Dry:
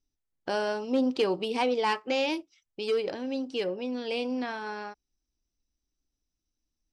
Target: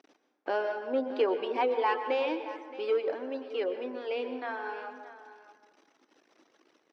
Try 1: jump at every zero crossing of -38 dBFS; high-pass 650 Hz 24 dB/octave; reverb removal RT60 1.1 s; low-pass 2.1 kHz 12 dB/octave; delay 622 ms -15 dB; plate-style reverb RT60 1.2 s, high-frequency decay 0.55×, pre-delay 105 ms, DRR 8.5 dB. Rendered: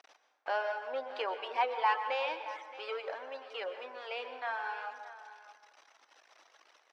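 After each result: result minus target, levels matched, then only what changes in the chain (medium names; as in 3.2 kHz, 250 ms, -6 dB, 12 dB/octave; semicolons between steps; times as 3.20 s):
250 Hz band -17.0 dB; jump at every zero crossing: distortion +5 dB
change: high-pass 320 Hz 24 dB/octave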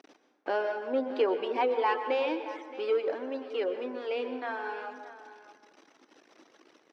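jump at every zero crossing: distortion +5 dB
change: jump at every zero crossing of -44 dBFS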